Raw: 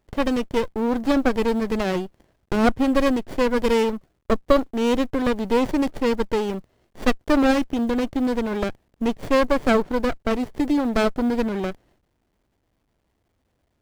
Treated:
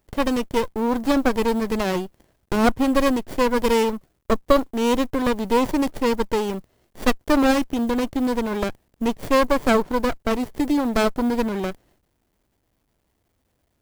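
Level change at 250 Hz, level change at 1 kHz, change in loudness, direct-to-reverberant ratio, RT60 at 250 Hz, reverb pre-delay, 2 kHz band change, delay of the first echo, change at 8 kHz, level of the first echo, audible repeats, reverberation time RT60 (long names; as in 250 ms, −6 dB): 0.0 dB, +2.5 dB, +0.5 dB, no reverb audible, no reverb audible, no reverb audible, +0.5 dB, no echo audible, +5.0 dB, no echo audible, no echo audible, no reverb audible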